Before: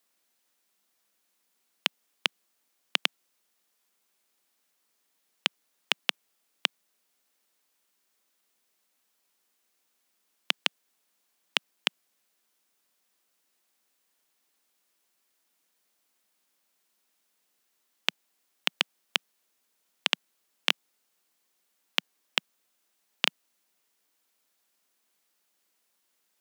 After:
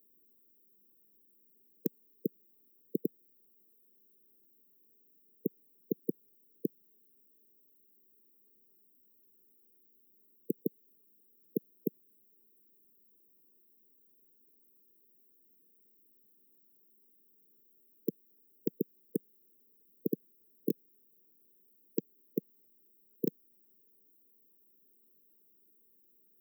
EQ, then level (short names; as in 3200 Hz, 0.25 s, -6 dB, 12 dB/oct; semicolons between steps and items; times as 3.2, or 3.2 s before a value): brick-wall FIR band-stop 470–14000 Hz; +12.5 dB